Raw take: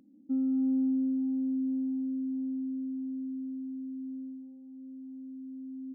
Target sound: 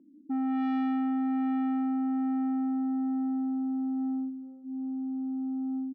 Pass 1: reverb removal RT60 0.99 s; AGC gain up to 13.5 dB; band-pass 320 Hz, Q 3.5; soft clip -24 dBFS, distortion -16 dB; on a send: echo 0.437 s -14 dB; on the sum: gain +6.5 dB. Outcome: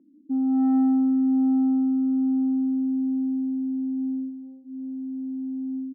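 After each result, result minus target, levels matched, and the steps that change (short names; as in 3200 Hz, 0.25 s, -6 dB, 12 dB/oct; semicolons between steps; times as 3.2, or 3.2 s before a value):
soft clip: distortion -9 dB; echo-to-direct +8.5 dB
change: soft clip -34 dBFS, distortion -7 dB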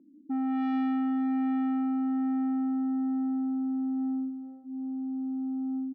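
echo-to-direct +8.5 dB
change: echo 0.437 s -22.5 dB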